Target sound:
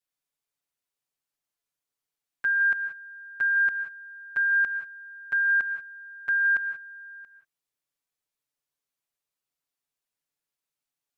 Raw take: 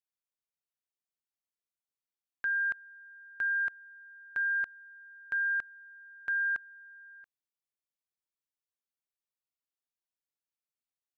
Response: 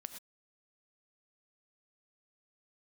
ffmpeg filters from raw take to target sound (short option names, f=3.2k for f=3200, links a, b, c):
-filter_complex "[0:a]asplit=2[a][b];[1:a]atrim=start_sample=2205,asetrate=29547,aresample=44100,adelay=7[c];[b][c]afir=irnorm=-1:irlink=0,volume=6.5dB[d];[a][d]amix=inputs=2:normalize=0"